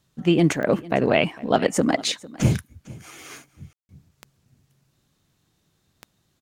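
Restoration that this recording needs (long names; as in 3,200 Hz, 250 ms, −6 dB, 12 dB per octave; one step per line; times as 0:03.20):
click removal
ambience match 0:03.73–0:03.89
echo removal 452 ms −20.5 dB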